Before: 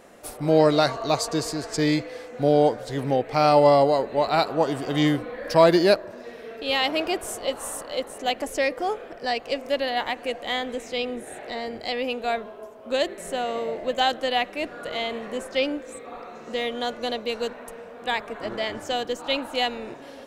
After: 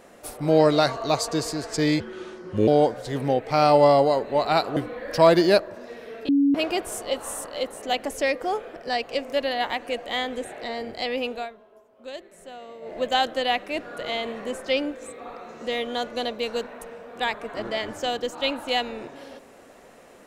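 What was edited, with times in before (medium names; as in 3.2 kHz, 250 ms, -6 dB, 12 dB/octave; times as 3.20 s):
2.00–2.50 s: speed 74%
4.59–5.13 s: delete
6.65–6.91 s: bleep 281 Hz -15.5 dBFS
10.81–11.31 s: delete
12.18–13.85 s: dip -13.5 dB, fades 0.17 s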